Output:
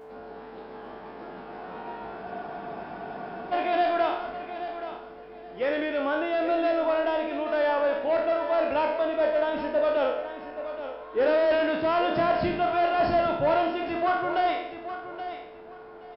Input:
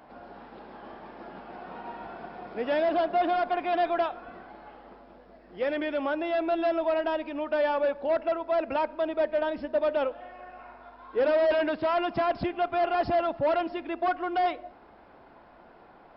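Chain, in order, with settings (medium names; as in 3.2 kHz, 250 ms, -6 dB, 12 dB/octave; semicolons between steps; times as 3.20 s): spectral sustain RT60 0.70 s; whistle 440 Hz -43 dBFS; feedback delay 826 ms, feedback 23%, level -11 dB; spectral freeze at 2.26 s, 1.26 s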